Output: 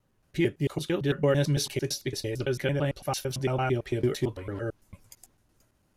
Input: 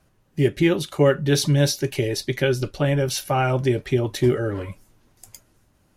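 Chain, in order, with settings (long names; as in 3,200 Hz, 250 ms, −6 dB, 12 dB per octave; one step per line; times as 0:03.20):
slices reordered back to front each 112 ms, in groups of 3
level −7 dB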